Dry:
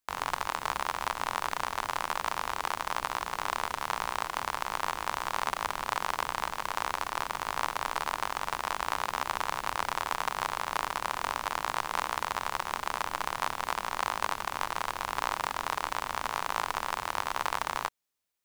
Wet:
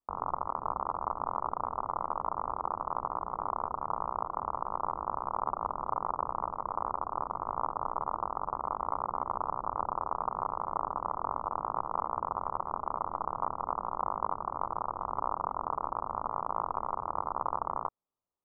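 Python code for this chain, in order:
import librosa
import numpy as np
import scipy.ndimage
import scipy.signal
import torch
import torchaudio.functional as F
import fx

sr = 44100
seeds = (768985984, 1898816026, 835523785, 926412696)

y = scipy.signal.sosfilt(scipy.signal.butter(16, 1300.0, 'lowpass', fs=sr, output='sos'), x)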